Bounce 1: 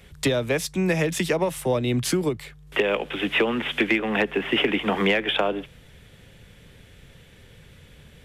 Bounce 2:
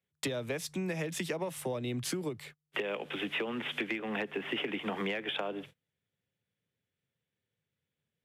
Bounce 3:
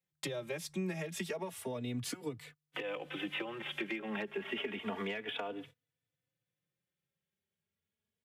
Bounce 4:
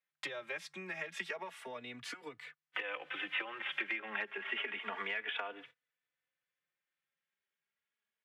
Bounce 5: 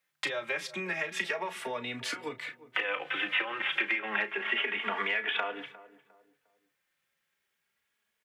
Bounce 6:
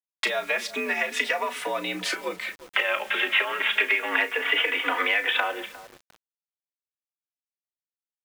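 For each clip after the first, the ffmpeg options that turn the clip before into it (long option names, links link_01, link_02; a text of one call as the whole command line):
ffmpeg -i in.wav -af "highpass=frequency=96:width=0.5412,highpass=frequency=96:width=1.3066,acompressor=threshold=-28dB:ratio=3,agate=range=-31dB:threshold=-43dB:ratio=16:detection=peak,volume=-5.5dB" out.wav
ffmpeg -i in.wav -filter_complex "[0:a]asplit=2[link_01][link_02];[link_02]adelay=3.4,afreqshift=0.3[link_03];[link_01][link_03]amix=inputs=2:normalize=1,volume=-1dB" out.wav
ffmpeg -i in.wav -af "bandpass=frequency=1700:width_type=q:width=1.3:csg=0,volume=6dB" out.wav
ffmpeg -i in.wav -filter_complex "[0:a]asplit=2[link_01][link_02];[link_02]acompressor=threshold=-45dB:ratio=6,volume=-1.5dB[link_03];[link_01][link_03]amix=inputs=2:normalize=0,asplit=2[link_04][link_05];[link_05]adelay=34,volume=-11dB[link_06];[link_04][link_06]amix=inputs=2:normalize=0,asplit=2[link_07][link_08];[link_08]adelay=354,lowpass=frequency=910:poles=1,volume=-15.5dB,asplit=2[link_09][link_10];[link_10]adelay=354,lowpass=frequency=910:poles=1,volume=0.39,asplit=2[link_11][link_12];[link_12]adelay=354,lowpass=frequency=910:poles=1,volume=0.39[link_13];[link_07][link_09][link_11][link_13]amix=inputs=4:normalize=0,volume=5.5dB" out.wav
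ffmpeg -i in.wav -af "afreqshift=62,acrusher=bits=8:mix=0:aa=0.000001,volume=7dB" out.wav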